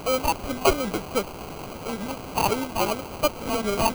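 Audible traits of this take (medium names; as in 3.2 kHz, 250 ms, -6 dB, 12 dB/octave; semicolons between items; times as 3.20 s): a quantiser's noise floor 6-bit, dither triangular; phasing stages 12, 2.8 Hz, lowest notch 440–2000 Hz; aliases and images of a low sample rate 1.8 kHz, jitter 0%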